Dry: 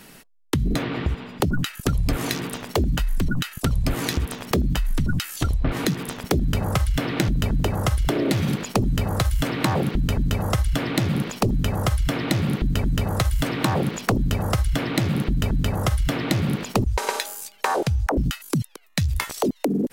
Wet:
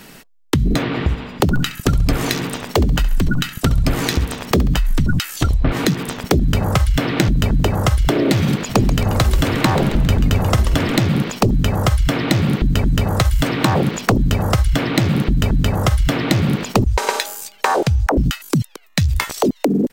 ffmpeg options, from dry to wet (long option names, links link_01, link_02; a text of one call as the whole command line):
ffmpeg -i in.wav -filter_complex "[0:a]asplit=3[link_01][link_02][link_03];[link_01]afade=type=out:start_time=0.99:duration=0.02[link_04];[link_02]aecho=1:1:68|136|204|272:0.168|0.0672|0.0269|0.0107,afade=type=in:start_time=0.99:duration=0.02,afade=type=out:start_time=4.76:duration=0.02[link_05];[link_03]afade=type=in:start_time=4.76:duration=0.02[link_06];[link_04][link_05][link_06]amix=inputs=3:normalize=0,asplit=3[link_07][link_08][link_09];[link_07]afade=type=out:start_time=8.68:duration=0.02[link_10];[link_08]asplit=7[link_11][link_12][link_13][link_14][link_15][link_16][link_17];[link_12]adelay=135,afreqshift=-140,volume=-10dB[link_18];[link_13]adelay=270,afreqshift=-280,volume=-15.2dB[link_19];[link_14]adelay=405,afreqshift=-420,volume=-20.4dB[link_20];[link_15]adelay=540,afreqshift=-560,volume=-25.6dB[link_21];[link_16]adelay=675,afreqshift=-700,volume=-30.8dB[link_22];[link_17]adelay=810,afreqshift=-840,volume=-36dB[link_23];[link_11][link_18][link_19][link_20][link_21][link_22][link_23]amix=inputs=7:normalize=0,afade=type=in:start_time=8.68:duration=0.02,afade=type=out:start_time=10.98:duration=0.02[link_24];[link_09]afade=type=in:start_time=10.98:duration=0.02[link_25];[link_10][link_24][link_25]amix=inputs=3:normalize=0,equalizer=frequency=11000:width=3.5:gain=-9,volume=6dB" out.wav